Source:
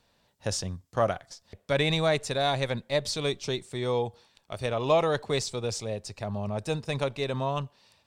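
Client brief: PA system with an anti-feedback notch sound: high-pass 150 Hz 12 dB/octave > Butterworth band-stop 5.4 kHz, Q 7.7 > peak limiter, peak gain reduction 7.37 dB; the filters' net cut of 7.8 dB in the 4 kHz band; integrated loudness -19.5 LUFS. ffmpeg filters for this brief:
-af "highpass=150,asuperstop=centerf=5400:order=8:qfactor=7.7,equalizer=f=4000:t=o:g=-8.5,volume=4.73,alimiter=limit=0.501:level=0:latency=1"

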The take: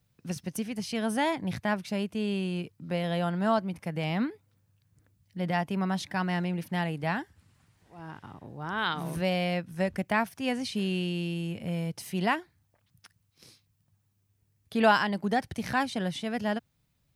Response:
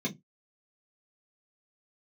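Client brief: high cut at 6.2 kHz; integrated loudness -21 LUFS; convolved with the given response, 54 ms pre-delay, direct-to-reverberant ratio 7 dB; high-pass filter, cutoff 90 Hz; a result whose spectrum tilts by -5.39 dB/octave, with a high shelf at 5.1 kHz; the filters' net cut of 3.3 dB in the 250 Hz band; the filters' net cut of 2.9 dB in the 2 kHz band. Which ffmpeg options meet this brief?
-filter_complex "[0:a]highpass=90,lowpass=6200,equalizer=f=250:t=o:g=-4.5,equalizer=f=2000:t=o:g=-4.5,highshelf=f=5100:g=5.5,asplit=2[s0][s1];[1:a]atrim=start_sample=2205,adelay=54[s2];[s1][s2]afir=irnorm=-1:irlink=0,volume=0.251[s3];[s0][s3]amix=inputs=2:normalize=0,volume=2.51"

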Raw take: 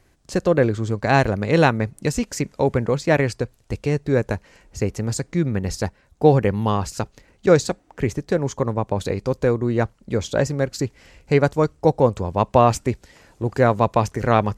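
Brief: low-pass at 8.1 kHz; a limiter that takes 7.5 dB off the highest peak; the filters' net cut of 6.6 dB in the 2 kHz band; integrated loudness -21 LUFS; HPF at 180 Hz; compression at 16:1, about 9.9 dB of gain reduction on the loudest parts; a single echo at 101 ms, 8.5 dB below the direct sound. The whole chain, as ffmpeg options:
-af "highpass=180,lowpass=8100,equalizer=f=2000:t=o:g=-9,acompressor=threshold=0.112:ratio=16,alimiter=limit=0.178:level=0:latency=1,aecho=1:1:101:0.376,volume=2.51"

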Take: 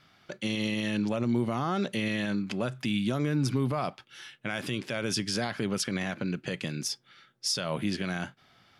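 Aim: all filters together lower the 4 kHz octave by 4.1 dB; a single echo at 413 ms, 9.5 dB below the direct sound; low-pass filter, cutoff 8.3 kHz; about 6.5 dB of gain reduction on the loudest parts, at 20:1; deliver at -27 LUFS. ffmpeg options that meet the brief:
-af "lowpass=8300,equalizer=f=4000:t=o:g=-5.5,acompressor=threshold=0.0355:ratio=20,aecho=1:1:413:0.335,volume=2.51"

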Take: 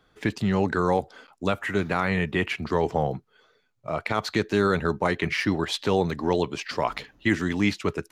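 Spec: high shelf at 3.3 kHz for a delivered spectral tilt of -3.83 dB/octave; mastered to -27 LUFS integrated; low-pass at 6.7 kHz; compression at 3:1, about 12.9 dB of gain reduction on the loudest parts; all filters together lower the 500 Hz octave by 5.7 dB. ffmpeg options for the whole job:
-af "lowpass=6700,equalizer=f=500:t=o:g=-7.5,highshelf=f=3300:g=3,acompressor=threshold=0.0126:ratio=3,volume=3.98"

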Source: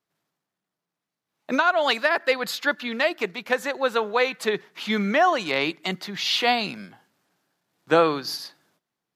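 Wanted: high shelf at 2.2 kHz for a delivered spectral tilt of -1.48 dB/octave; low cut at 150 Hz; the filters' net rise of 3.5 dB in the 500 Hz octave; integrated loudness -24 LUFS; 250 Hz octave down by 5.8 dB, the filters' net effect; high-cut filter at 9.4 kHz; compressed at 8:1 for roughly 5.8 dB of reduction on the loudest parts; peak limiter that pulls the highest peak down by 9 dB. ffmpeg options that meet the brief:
-af "highpass=150,lowpass=9400,equalizer=f=250:t=o:g=-9,equalizer=f=500:t=o:g=5.5,highshelf=f=2200:g=8,acompressor=threshold=0.141:ratio=8,volume=1.19,alimiter=limit=0.224:level=0:latency=1"

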